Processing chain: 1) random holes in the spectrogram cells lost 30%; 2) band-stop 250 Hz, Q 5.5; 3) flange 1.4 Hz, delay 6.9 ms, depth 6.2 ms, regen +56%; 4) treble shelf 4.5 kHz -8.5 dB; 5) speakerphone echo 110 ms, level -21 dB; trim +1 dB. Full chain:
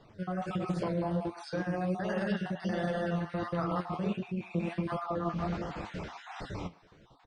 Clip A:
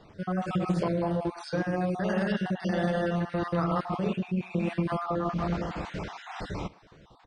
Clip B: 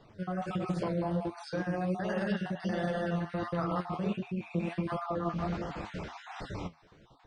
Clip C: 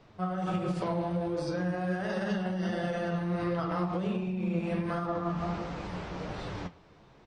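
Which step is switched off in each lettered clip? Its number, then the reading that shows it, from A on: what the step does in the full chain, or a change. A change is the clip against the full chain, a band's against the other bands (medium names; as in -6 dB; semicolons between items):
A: 3, loudness change +4.5 LU; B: 5, echo-to-direct -25.5 dB to none; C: 1, momentary loudness spread change -2 LU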